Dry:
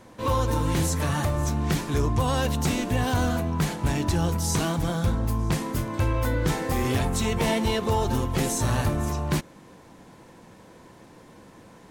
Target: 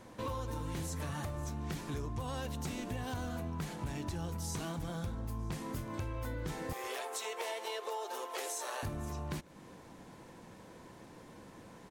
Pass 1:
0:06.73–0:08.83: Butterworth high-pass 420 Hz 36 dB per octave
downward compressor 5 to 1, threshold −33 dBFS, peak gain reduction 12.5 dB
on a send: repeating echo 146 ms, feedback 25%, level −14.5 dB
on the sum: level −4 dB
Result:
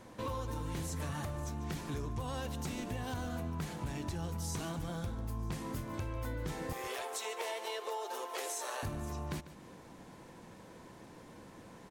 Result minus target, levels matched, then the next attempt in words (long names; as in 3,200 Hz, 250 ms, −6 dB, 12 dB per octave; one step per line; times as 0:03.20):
echo-to-direct +11.5 dB
0:06.73–0:08.83: Butterworth high-pass 420 Hz 36 dB per octave
downward compressor 5 to 1, threshold −33 dBFS, peak gain reduction 12.5 dB
on a send: repeating echo 146 ms, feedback 25%, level −26 dB
on the sum: level −4 dB